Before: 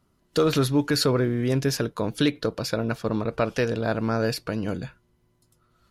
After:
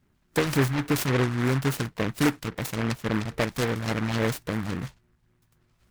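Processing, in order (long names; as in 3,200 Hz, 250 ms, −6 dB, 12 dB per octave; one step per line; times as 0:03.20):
all-pass phaser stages 12, 3.6 Hz, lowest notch 420–1,800 Hz
short delay modulated by noise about 1,300 Hz, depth 0.21 ms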